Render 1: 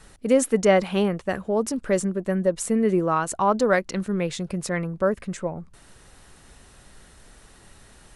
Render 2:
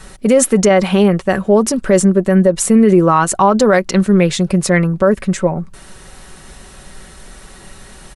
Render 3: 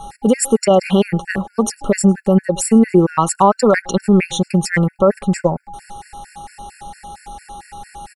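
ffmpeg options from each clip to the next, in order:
-af "aecho=1:1:5.3:0.4,alimiter=level_in=4.47:limit=0.891:release=50:level=0:latency=1,volume=0.891"
-filter_complex "[0:a]aeval=exprs='val(0)+0.0282*sin(2*PI*820*n/s)':c=same,asplit=2[s0][s1];[s1]adelay=105,volume=0.0562,highshelf=f=4000:g=-2.36[s2];[s0][s2]amix=inputs=2:normalize=0,afftfilt=real='re*gt(sin(2*PI*4.4*pts/sr)*(1-2*mod(floor(b*sr/1024/1400),2)),0)':imag='im*gt(sin(2*PI*4.4*pts/sr)*(1-2*mod(floor(b*sr/1024/1400),2)),0)':win_size=1024:overlap=0.75"

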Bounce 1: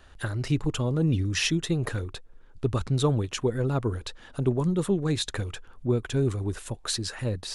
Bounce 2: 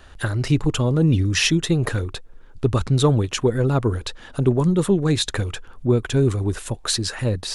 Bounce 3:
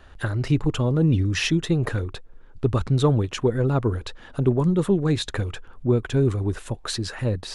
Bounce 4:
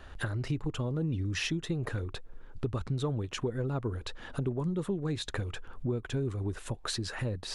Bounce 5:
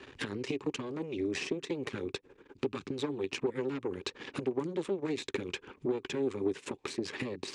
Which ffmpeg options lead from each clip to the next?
-af "acontrast=83"
-af "highshelf=f=4100:g=-9,volume=0.794"
-af "acompressor=threshold=0.0224:ratio=3"
-filter_complex "[0:a]acrossover=split=530|2000[s0][s1][s2];[s0]acompressor=threshold=0.0126:ratio=4[s3];[s1]acompressor=threshold=0.00501:ratio=4[s4];[s2]acompressor=threshold=0.00562:ratio=4[s5];[s3][s4][s5]amix=inputs=3:normalize=0,aeval=exprs='0.075*(cos(1*acos(clip(val(0)/0.075,-1,1)))-cos(1*PI/2))+0.0266*(cos(6*acos(clip(val(0)/0.075,-1,1)))-cos(6*PI/2))':c=same,highpass=160,equalizer=f=280:t=q:w=4:g=6,equalizer=f=390:t=q:w=4:g=10,equalizer=f=670:t=q:w=4:g=-10,equalizer=f=1400:t=q:w=4:g=-6,equalizer=f=2400:t=q:w=4:g=7,lowpass=f=8100:w=0.5412,lowpass=f=8100:w=1.3066"

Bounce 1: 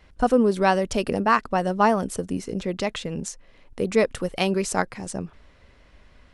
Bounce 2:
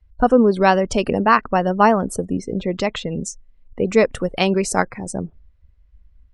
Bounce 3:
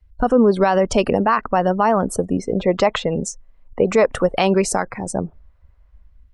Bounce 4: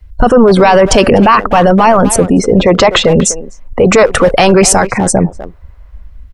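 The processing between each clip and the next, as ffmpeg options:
-af "afftdn=nr=28:nf=-40,volume=1.78"
-filter_complex "[0:a]acrossover=split=650|1300[s0][s1][s2];[s1]dynaudnorm=f=120:g=7:m=5.62[s3];[s0][s3][s2]amix=inputs=3:normalize=0,alimiter=level_in=2.11:limit=0.891:release=50:level=0:latency=1,volume=0.562"
-filter_complex "[0:a]asplit=2[s0][s1];[s1]adelay=250,highpass=300,lowpass=3400,asoftclip=type=hard:threshold=0.168,volume=0.141[s2];[s0][s2]amix=inputs=2:normalize=0,apsyclip=8.41,volume=0.841"

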